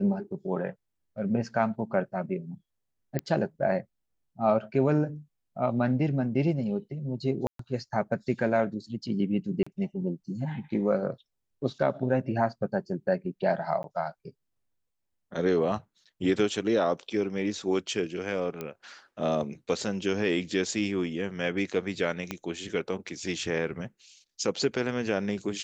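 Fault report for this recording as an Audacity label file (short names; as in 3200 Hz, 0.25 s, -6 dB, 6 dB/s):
3.190000	3.190000	pop -16 dBFS
7.470000	7.590000	gap 0.123 s
9.630000	9.660000	gap 35 ms
13.830000	13.840000	gap 12 ms
18.610000	18.610000	pop -20 dBFS
22.310000	22.310000	pop -16 dBFS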